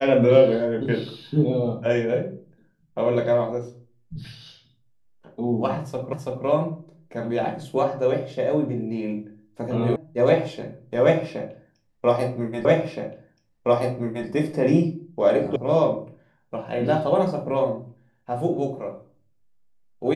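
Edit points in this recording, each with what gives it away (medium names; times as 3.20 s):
6.13 s: repeat of the last 0.33 s
9.96 s: sound stops dead
12.65 s: repeat of the last 1.62 s
15.56 s: sound stops dead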